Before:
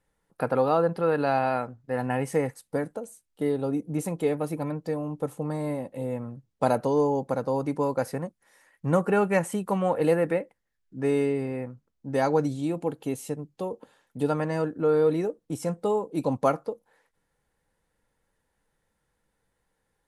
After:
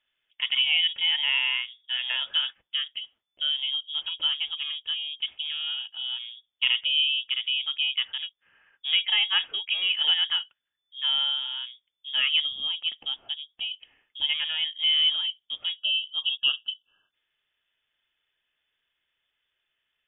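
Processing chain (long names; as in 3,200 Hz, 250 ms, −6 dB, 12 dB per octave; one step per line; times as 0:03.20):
low-shelf EQ 130 Hz −11 dB
time-frequency box erased 0:15.79–0:17.11, 880–1,800 Hz
voice inversion scrambler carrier 3,500 Hz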